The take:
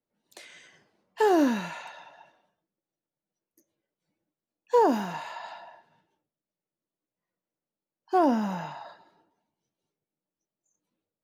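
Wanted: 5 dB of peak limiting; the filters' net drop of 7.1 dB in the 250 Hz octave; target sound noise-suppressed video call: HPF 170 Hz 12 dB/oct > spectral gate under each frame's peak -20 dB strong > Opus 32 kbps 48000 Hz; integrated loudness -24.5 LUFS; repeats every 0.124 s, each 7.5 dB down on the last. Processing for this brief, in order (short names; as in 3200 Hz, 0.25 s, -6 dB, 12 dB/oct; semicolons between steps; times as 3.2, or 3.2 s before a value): bell 250 Hz -8.5 dB; limiter -18.5 dBFS; HPF 170 Hz 12 dB/oct; feedback echo 0.124 s, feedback 42%, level -7.5 dB; spectral gate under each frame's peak -20 dB strong; gain +7 dB; Opus 32 kbps 48000 Hz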